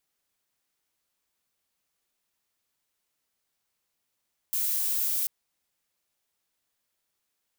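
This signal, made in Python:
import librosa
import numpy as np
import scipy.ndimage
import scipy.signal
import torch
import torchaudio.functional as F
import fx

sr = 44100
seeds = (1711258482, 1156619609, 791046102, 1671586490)

y = fx.noise_colour(sr, seeds[0], length_s=0.74, colour='violet', level_db=-27.5)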